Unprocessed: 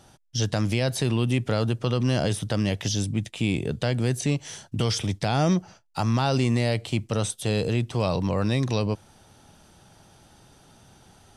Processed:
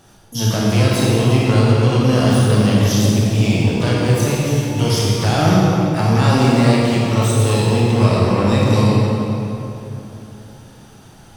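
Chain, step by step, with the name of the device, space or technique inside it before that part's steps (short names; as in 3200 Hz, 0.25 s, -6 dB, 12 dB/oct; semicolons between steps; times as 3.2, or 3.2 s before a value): shimmer-style reverb (harmoniser +12 st -9 dB; reverb RT60 3.2 s, pre-delay 22 ms, DRR -5.5 dB); gain +2 dB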